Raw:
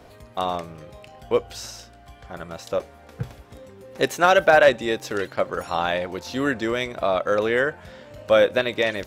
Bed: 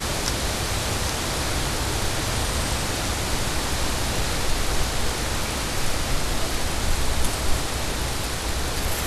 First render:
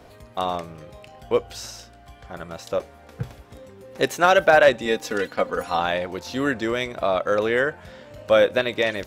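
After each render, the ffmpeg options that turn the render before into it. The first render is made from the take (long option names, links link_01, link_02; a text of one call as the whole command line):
ffmpeg -i in.wav -filter_complex "[0:a]asettb=1/sr,asplit=3[link_01][link_02][link_03];[link_01]atrim=end=4.854[link_04];[link_02]atrim=start=4.85:end=5.8,asetpts=PTS-STARTPTS,afade=type=in:duration=0.004:curve=qsin,afade=type=out:start_time=0.946:duration=0.004:curve=qsin,aecho=1:1:4.1:0.65,atrim=end_sample=41895[link_05];[link_03]atrim=start=5.796[link_06];[link_04][link_05]acrossfade=duration=0.004:curve1=hsin:curve2=qsin[link_07];[link_07][link_06]acrossfade=duration=0.004:curve1=qsin:curve2=hsin" out.wav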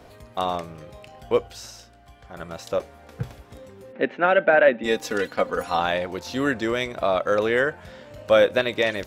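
ffmpeg -i in.wav -filter_complex "[0:a]asplit=3[link_01][link_02][link_03];[link_01]afade=type=out:start_time=3.91:duration=0.02[link_04];[link_02]highpass=frequency=180:width=0.5412,highpass=frequency=180:width=1.3066,equalizer=frequency=230:width_type=q:width=4:gain=5,equalizer=frequency=400:width_type=q:width=4:gain=-3,equalizer=frequency=770:width_type=q:width=4:gain=-4,equalizer=frequency=1100:width_type=q:width=4:gain=-9,lowpass=frequency=2500:width=0.5412,lowpass=frequency=2500:width=1.3066,afade=type=in:start_time=3.91:duration=0.02,afade=type=out:start_time=4.83:duration=0.02[link_05];[link_03]afade=type=in:start_time=4.83:duration=0.02[link_06];[link_04][link_05][link_06]amix=inputs=3:normalize=0,asplit=3[link_07][link_08][link_09];[link_07]atrim=end=1.482[link_10];[link_08]atrim=start=1.478:end=2.372,asetpts=PTS-STARTPTS,volume=-4dB[link_11];[link_09]atrim=start=2.368[link_12];[link_10][link_11]acrossfade=duration=0.004:curve1=hsin:curve2=hsin[link_13];[link_13][link_12]acrossfade=duration=0.004:curve1=hsin:curve2=hsin" out.wav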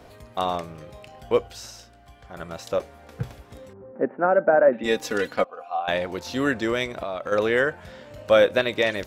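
ffmpeg -i in.wav -filter_complex "[0:a]asettb=1/sr,asplit=3[link_01][link_02][link_03];[link_01]atrim=end=3.734[link_04];[link_02]atrim=start=3.73:end=4.73,asetpts=PTS-STARTPTS,afade=type=in:duration=0.004:curve=qsin,afade=type=out:start_time=0.996:duration=0.004:curve=qsin,lowpass=frequency=1300:width=0.5412,lowpass=frequency=1300:width=1.3066[link_05];[link_03]atrim=start=4.726[link_06];[link_04][link_05]acrossfade=duration=0.004:curve1=hsin:curve2=qsin[link_07];[link_07][link_06]acrossfade=duration=0.004:curve1=qsin:curve2=hsin,asettb=1/sr,asplit=3[link_08][link_09][link_10];[link_08]atrim=end=5.444[link_11];[link_09]atrim=start=5.44:end=5.88,asetpts=PTS-STARTPTS,afade=type=in:duration=0.004:curve=qsin,afade=type=out:start_time=0.436:duration=0.004:curve=qsin,asplit=3[link_12][link_13][link_14];[link_12]bandpass=frequency=730:width_type=q:width=8,volume=0dB[link_15];[link_13]bandpass=frequency=1090:width_type=q:width=8,volume=-6dB[link_16];[link_14]bandpass=frequency=2440:width_type=q:width=8,volume=-9dB[link_17];[link_15][link_16][link_17]amix=inputs=3:normalize=0[link_18];[link_10]atrim=start=5.876[link_19];[link_11][link_18]acrossfade=duration=0.004:curve1=hsin:curve2=qsin[link_20];[link_20][link_19]acrossfade=duration=0.004:curve1=qsin:curve2=hsin,asplit=3[link_21][link_22][link_23];[link_21]afade=type=out:start_time=6.86:duration=0.02[link_24];[link_22]acompressor=threshold=-27dB:ratio=4:attack=3.2:release=140:knee=1:detection=peak,afade=type=in:start_time=6.86:duration=0.02,afade=type=out:start_time=7.31:duration=0.02[link_25];[link_23]afade=type=in:start_time=7.31:duration=0.02[link_26];[link_24][link_25][link_26]amix=inputs=3:normalize=0" out.wav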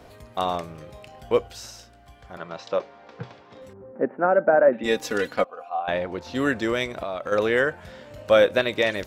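ffmpeg -i in.wav -filter_complex "[0:a]asettb=1/sr,asplit=3[link_01][link_02][link_03];[link_01]atrim=end=2.374[link_04];[link_02]atrim=start=2.37:end=3.62,asetpts=PTS-STARTPTS,afade=type=in:duration=0.004:curve=qsin,afade=type=out:start_time=1.246:duration=0.004:curve=qsin,highpass=frequency=130:width=0.5412,highpass=frequency=130:width=1.3066,equalizer=frequency=140:width_type=q:width=4:gain=-7,equalizer=frequency=250:width_type=q:width=4:gain=-5,equalizer=frequency=1000:width_type=q:width=4:gain=5,lowpass=frequency=5200:width=0.5412,lowpass=frequency=5200:width=1.3066[link_05];[link_03]atrim=start=3.616[link_06];[link_04][link_05]acrossfade=duration=0.004:curve1=hsin:curve2=qsin[link_07];[link_07][link_06]acrossfade=duration=0.004:curve1=qsin:curve2=hsin,asettb=1/sr,asplit=3[link_08][link_09][link_10];[link_08]atrim=end=5.694[link_11];[link_09]atrim=start=5.69:end=6.35,asetpts=PTS-STARTPTS,afade=type=in:duration=0.004:curve=qsin,afade=type=out:start_time=0.656:duration=0.004:curve=qsin,aemphasis=mode=reproduction:type=75kf[link_12];[link_10]atrim=start=6.346[link_13];[link_11][link_12]acrossfade=duration=0.004:curve1=hsin:curve2=qsin[link_14];[link_14][link_13]acrossfade=duration=0.004:curve1=qsin:curve2=hsin" out.wav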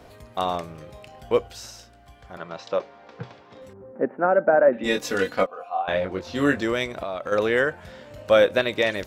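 ffmpeg -i in.wav -filter_complex "[0:a]asettb=1/sr,asplit=3[link_01][link_02][link_03];[link_01]atrim=end=4.744[link_04];[link_02]atrim=start=4.74:end=6.63,asetpts=PTS-STARTPTS,afade=type=in:duration=0.004:curve=qsin,afade=type=out:start_time=1.886:duration=0.004:curve=qsin,asplit=2[link_05][link_06];[link_06]adelay=21,volume=-4dB[link_07];[link_05][link_07]amix=inputs=2:normalize=0,atrim=end_sample=83349[link_08];[link_03]atrim=start=6.626[link_09];[link_04][link_08]acrossfade=duration=0.004:curve1=hsin:curve2=qsin[link_10];[link_10][link_09]acrossfade=duration=0.004:curve1=qsin:curve2=hsin" out.wav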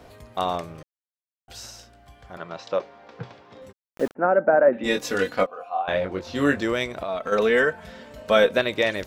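ffmpeg -i in.wav -filter_complex "[0:a]asplit=3[link_01][link_02][link_03];[link_01]afade=type=out:start_time=3.71:duration=0.02[link_04];[link_02]aeval=exprs='val(0)*gte(abs(val(0)),0.02)':channel_layout=same,afade=type=in:start_time=3.71:duration=0.02,afade=type=out:start_time=4.15:duration=0.02[link_05];[link_03]afade=type=in:start_time=4.15:duration=0.02[link_06];[link_04][link_05][link_06]amix=inputs=3:normalize=0,asettb=1/sr,asplit=3[link_07][link_08][link_09];[link_07]atrim=end=7.084[link_10];[link_08]atrim=start=7.08:end=8.57,asetpts=PTS-STARTPTS,afade=type=in:duration=0.004:curve=qsin,afade=type=out:start_time=1.486:duration=0.004:curve=qsin,aecho=1:1:4.5:0.65,atrim=end_sample=65709[link_11];[link_09]atrim=start=8.566[link_12];[link_10][link_11]acrossfade=duration=0.004:curve1=hsin:curve2=qsin[link_13];[link_13][link_12]acrossfade=duration=0.004:curve1=qsin:curve2=hsin,asplit=3[link_14][link_15][link_16];[link_14]atrim=end=0.83,asetpts=PTS-STARTPTS,afade=type=out:start_time=0.826:duration=0.004:curve=hsin[link_17];[link_15]atrim=start=0.83:end=1.48,asetpts=PTS-STARTPTS,volume=0[link_18];[link_16]atrim=start=1.48,asetpts=PTS-STARTPTS,afade=type=in:duration=0.004:curve=hsin[link_19];[link_17][link_18][link_19]concat=n=3:v=0:a=1" out.wav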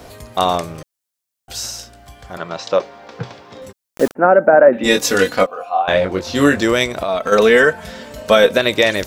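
ffmpeg -i in.wav -filter_complex "[0:a]acrossover=split=4600[link_01][link_02];[link_02]acontrast=86[link_03];[link_01][link_03]amix=inputs=2:normalize=0,alimiter=level_in=9dB:limit=-1dB:release=50:level=0:latency=1" out.wav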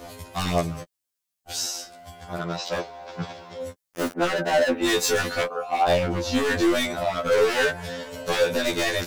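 ffmpeg -i in.wav -af "volume=17.5dB,asoftclip=hard,volume=-17.5dB,afftfilt=real='re*2*eq(mod(b,4),0)':imag='im*2*eq(mod(b,4),0)':win_size=2048:overlap=0.75" out.wav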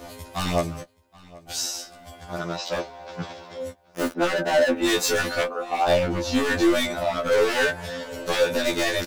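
ffmpeg -i in.wav -filter_complex "[0:a]asplit=2[link_01][link_02];[link_02]adelay=15,volume=-11.5dB[link_03];[link_01][link_03]amix=inputs=2:normalize=0,asplit=2[link_04][link_05];[link_05]adelay=776,lowpass=frequency=4800:poles=1,volume=-22dB,asplit=2[link_06][link_07];[link_07]adelay=776,lowpass=frequency=4800:poles=1,volume=0.46,asplit=2[link_08][link_09];[link_09]adelay=776,lowpass=frequency=4800:poles=1,volume=0.46[link_10];[link_04][link_06][link_08][link_10]amix=inputs=4:normalize=0" out.wav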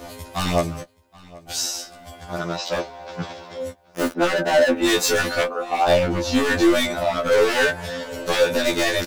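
ffmpeg -i in.wav -af "volume=3dB" out.wav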